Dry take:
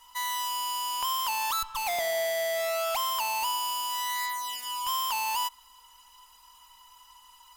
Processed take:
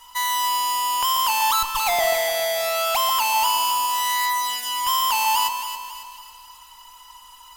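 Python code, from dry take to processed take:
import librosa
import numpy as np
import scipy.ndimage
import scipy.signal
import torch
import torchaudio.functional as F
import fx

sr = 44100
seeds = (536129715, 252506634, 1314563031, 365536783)

y = fx.echo_alternate(x, sr, ms=137, hz=990.0, feedback_pct=67, wet_db=-5.0)
y = F.gain(torch.from_numpy(y), 8.0).numpy()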